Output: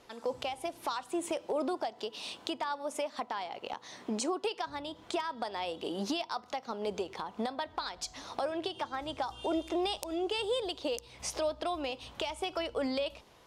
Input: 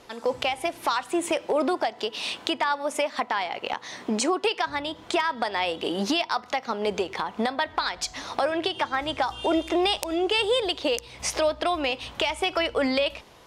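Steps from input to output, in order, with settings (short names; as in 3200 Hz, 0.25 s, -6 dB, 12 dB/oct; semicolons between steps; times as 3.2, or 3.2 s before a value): dynamic EQ 2000 Hz, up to -8 dB, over -43 dBFS, Q 1.3; gain -8 dB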